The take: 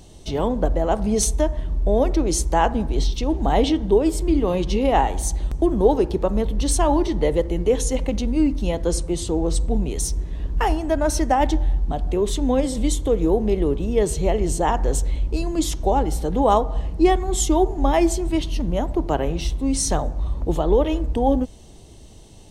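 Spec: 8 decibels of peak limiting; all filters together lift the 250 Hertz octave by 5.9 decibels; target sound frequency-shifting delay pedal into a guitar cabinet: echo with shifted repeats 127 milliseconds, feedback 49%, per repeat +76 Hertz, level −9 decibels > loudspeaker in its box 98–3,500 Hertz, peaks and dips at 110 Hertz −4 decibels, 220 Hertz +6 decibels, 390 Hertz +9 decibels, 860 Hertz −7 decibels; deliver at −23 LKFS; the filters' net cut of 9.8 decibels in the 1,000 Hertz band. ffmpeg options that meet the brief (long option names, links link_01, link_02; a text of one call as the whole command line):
ffmpeg -i in.wav -filter_complex "[0:a]equalizer=frequency=250:width_type=o:gain=3.5,equalizer=frequency=1000:width_type=o:gain=-9,alimiter=limit=-13dB:level=0:latency=1,asplit=7[link_01][link_02][link_03][link_04][link_05][link_06][link_07];[link_02]adelay=127,afreqshift=76,volume=-9dB[link_08];[link_03]adelay=254,afreqshift=152,volume=-15.2dB[link_09];[link_04]adelay=381,afreqshift=228,volume=-21.4dB[link_10];[link_05]adelay=508,afreqshift=304,volume=-27.6dB[link_11];[link_06]adelay=635,afreqshift=380,volume=-33.8dB[link_12];[link_07]adelay=762,afreqshift=456,volume=-40dB[link_13];[link_01][link_08][link_09][link_10][link_11][link_12][link_13]amix=inputs=7:normalize=0,highpass=98,equalizer=frequency=110:width_type=q:width=4:gain=-4,equalizer=frequency=220:width_type=q:width=4:gain=6,equalizer=frequency=390:width_type=q:width=4:gain=9,equalizer=frequency=860:width_type=q:width=4:gain=-7,lowpass=frequency=3500:width=0.5412,lowpass=frequency=3500:width=1.3066,volume=-3dB" out.wav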